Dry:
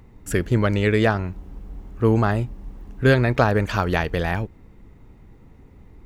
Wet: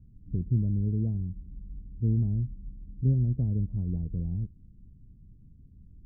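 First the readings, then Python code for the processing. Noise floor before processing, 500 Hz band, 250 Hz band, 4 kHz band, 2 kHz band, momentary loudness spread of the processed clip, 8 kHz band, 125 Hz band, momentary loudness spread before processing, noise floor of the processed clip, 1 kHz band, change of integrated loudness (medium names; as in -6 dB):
-49 dBFS, -25.0 dB, -9.0 dB, under -40 dB, under -40 dB, 18 LU, no reading, -4.0 dB, 20 LU, -54 dBFS, under -40 dB, -8.5 dB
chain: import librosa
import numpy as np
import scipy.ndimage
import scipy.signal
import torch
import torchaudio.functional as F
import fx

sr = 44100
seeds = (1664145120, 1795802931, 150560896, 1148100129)

y = fx.ladder_lowpass(x, sr, hz=240.0, resonance_pct=20)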